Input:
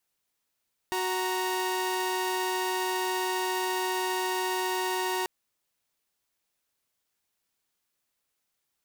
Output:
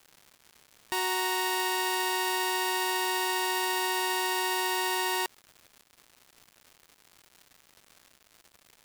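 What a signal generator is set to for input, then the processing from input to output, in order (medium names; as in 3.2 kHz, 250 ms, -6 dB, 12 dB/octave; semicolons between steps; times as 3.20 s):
chord F#4/A#5 saw, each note -27.5 dBFS 4.34 s
tilt shelf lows -3.5 dB; band-stop 6.2 kHz, Q 7.3; crackle 270 per s -41 dBFS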